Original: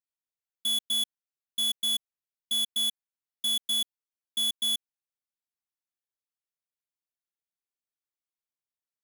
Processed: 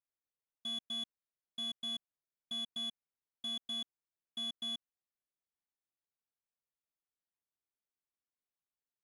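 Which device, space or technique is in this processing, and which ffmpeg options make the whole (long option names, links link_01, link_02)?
through cloth: -af "lowpass=8200,highshelf=frequency=2900:gain=-18,volume=-1dB"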